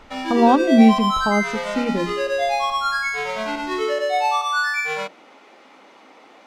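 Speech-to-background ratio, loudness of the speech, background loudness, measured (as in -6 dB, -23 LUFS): 4.0 dB, -18.5 LUFS, -22.5 LUFS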